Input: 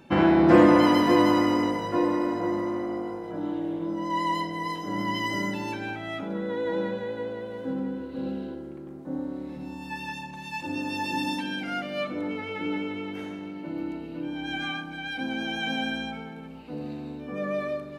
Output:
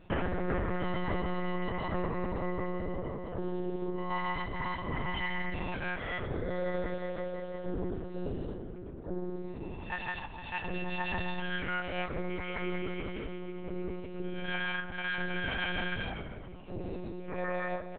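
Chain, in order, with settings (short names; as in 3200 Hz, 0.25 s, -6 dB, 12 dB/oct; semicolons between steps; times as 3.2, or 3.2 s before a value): dynamic EQ 1700 Hz, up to +7 dB, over -45 dBFS, Q 2.3; compressor 6:1, threshold -26 dBFS, peak gain reduction 14 dB; ring modulator 92 Hz; echo 0.153 s -17.5 dB; monotone LPC vocoder at 8 kHz 180 Hz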